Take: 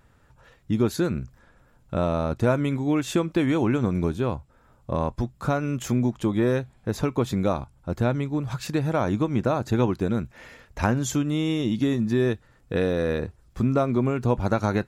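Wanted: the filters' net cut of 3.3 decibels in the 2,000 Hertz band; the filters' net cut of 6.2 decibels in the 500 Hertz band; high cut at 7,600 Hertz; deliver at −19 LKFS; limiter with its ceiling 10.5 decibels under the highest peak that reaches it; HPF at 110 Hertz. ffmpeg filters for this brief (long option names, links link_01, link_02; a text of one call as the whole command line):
ffmpeg -i in.wav -af "highpass=110,lowpass=7600,equalizer=frequency=500:width_type=o:gain=-8,equalizer=frequency=2000:width_type=o:gain=-4,volume=11.5dB,alimiter=limit=-8dB:level=0:latency=1" out.wav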